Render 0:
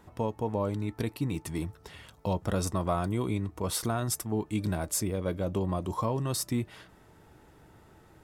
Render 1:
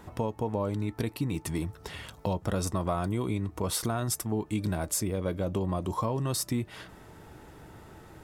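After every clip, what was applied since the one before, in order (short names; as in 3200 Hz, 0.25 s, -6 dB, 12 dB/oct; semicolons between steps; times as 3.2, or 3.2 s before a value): compressor 2:1, threshold -39 dBFS, peak gain reduction 8.5 dB; gain +7 dB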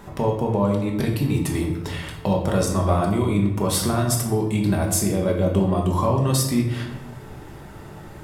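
shoebox room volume 340 m³, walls mixed, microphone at 1.2 m; gain +5.5 dB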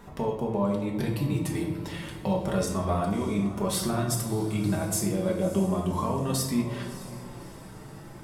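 diffused feedback echo 0.612 s, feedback 49%, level -14.5 dB; flange 0.32 Hz, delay 4.2 ms, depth 2.3 ms, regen -40%; gain -2.5 dB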